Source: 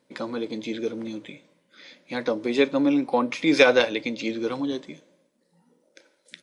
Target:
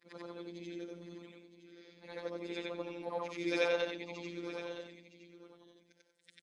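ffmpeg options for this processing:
ffmpeg -i in.wav -af "afftfilt=real='re':imag='-im':win_size=8192:overlap=0.75,aecho=1:1:965:0.224,afftfilt=real='hypot(re,im)*cos(PI*b)':imag='0':win_size=1024:overlap=0.75,volume=-7.5dB" out.wav

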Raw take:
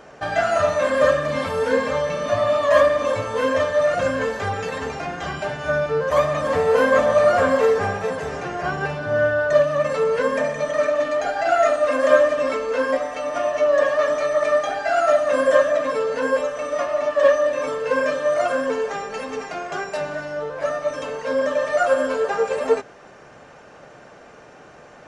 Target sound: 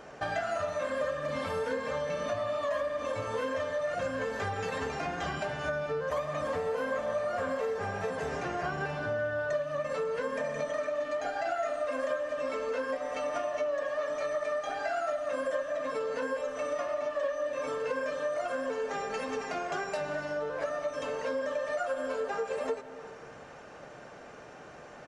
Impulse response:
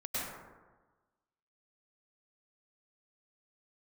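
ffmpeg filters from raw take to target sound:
-filter_complex "[0:a]asplit=2[link_01][link_02];[1:a]atrim=start_sample=2205[link_03];[link_02][link_03]afir=irnorm=-1:irlink=0,volume=-20dB[link_04];[link_01][link_04]amix=inputs=2:normalize=0,acompressor=threshold=-26dB:ratio=6,asplit=2[link_05][link_06];[link_06]adelay=160,highpass=300,lowpass=3400,asoftclip=type=hard:threshold=-28.5dB,volume=-16dB[link_07];[link_05][link_07]amix=inputs=2:normalize=0,volume=-4dB"

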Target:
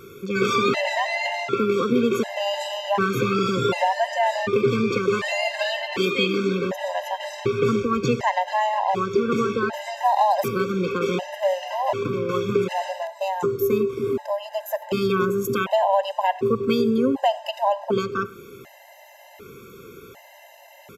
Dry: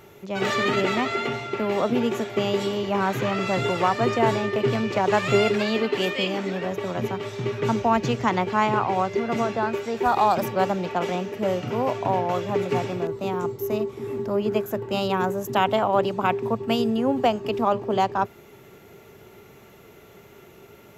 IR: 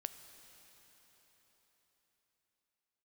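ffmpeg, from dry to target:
-filter_complex "[0:a]acompressor=threshold=-24dB:ratio=2.5,asplit=2[link_01][link_02];[1:a]atrim=start_sample=2205,atrim=end_sample=6174,lowshelf=frequency=110:gain=-11.5[link_03];[link_02][link_03]afir=irnorm=-1:irlink=0,volume=10dB[link_04];[link_01][link_04]amix=inputs=2:normalize=0,aresample=32000,aresample=44100,afftfilt=real='re*gt(sin(2*PI*0.67*pts/sr)*(1-2*mod(floor(b*sr/1024/530),2)),0)':imag='im*gt(sin(2*PI*0.67*pts/sr)*(1-2*mod(floor(b*sr/1024/530),2)),0)':win_size=1024:overlap=0.75,volume=-2dB"

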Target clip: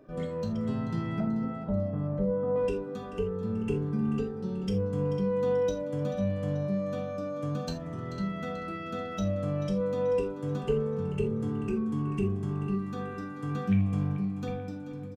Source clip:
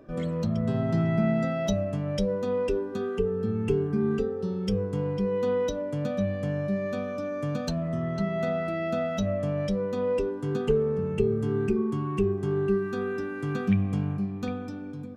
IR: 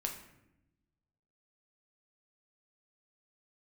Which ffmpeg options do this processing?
-filter_complex "[0:a]asettb=1/sr,asplit=3[link_01][link_02][link_03];[link_01]atrim=end=1.204[link_04];[link_02]atrim=start=1.2:end=2.56,asetpts=PTS-STARTPTS,afade=type=in:duration=0.004:curve=qsin,afade=type=out:start_time=1.356:duration=0.004:curve=qsin,lowpass=frequency=1400:width=0.5412,lowpass=frequency=1400:width=1.3066[link_05];[link_03]atrim=start=2.556[link_06];[link_04][link_05]acrossfade=duration=0.004:curve1=hsin:curve2=qsin[link_07];[link_07][link_06]acrossfade=duration=0.004:curve1=qsin:curve2=hsin,aecho=1:1:436|872|1308|1744|2180:0.211|0.112|0.0594|0.0315|0.0167[link_08];[1:a]atrim=start_sample=2205,atrim=end_sample=3969[link_09];[link_08][link_09]afir=irnorm=-1:irlink=0,volume=-4dB"

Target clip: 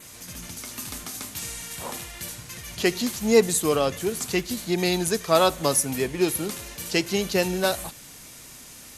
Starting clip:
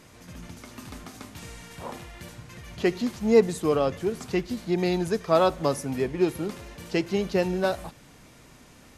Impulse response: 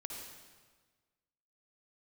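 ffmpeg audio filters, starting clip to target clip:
-af "adynamicequalizer=threshold=0.00126:dfrequency=5100:dqfactor=5:tfrequency=5100:tqfactor=5:attack=5:release=100:ratio=0.375:range=2:mode=cutabove:tftype=bell,crystalizer=i=5:c=0"

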